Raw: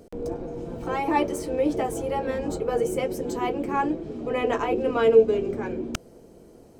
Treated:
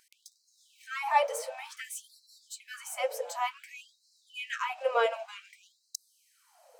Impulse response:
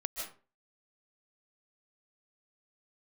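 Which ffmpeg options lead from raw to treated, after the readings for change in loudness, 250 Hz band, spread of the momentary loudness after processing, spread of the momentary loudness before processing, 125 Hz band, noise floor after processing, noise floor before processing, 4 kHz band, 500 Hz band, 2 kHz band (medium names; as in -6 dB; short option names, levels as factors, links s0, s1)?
-7.5 dB, under -40 dB, 19 LU, 14 LU, under -40 dB, -73 dBFS, -51 dBFS, -0.5 dB, -12.5 dB, -1.5 dB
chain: -af "afftfilt=real='re*gte(b*sr/1024,460*pow(4000/460,0.5+0.5*sin(2*PI*0.55*pts/sr)))':imag='im*gte(b*sr/1024,460*pow(4000/460,0.5+0.5*sin(2*PI*0.55*pts/sr)))':win_size=1024:overlap=0.75"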